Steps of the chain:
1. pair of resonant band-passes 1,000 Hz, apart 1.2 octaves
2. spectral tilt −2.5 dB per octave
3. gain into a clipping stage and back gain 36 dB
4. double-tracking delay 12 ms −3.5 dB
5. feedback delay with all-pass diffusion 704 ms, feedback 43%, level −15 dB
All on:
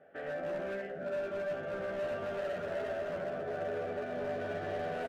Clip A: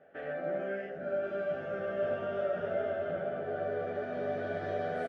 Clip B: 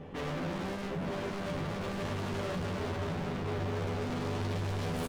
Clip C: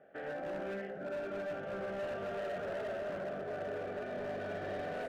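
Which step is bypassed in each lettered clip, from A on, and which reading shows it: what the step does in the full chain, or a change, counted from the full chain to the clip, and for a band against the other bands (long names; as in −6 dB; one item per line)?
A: 3, distortion level −11 dB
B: 1, 500 Hz band −12.0 dB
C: 4, change in integrated loudness −2.5 LU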